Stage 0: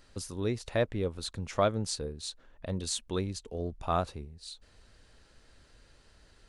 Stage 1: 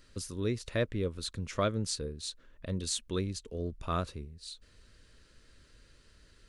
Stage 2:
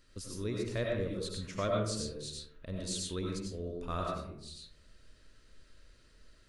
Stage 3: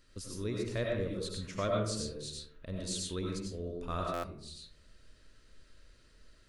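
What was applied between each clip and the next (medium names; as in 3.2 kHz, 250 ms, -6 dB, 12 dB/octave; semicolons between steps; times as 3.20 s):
peaking EQ 780 Hz -14 dB 0.49 oct
reverberation RT60 0.70 s, pre-delay 55 ms, DRR -1.5 dB; trim -5.5 dB
buffer glitch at 4.13 s, samples 512, times 8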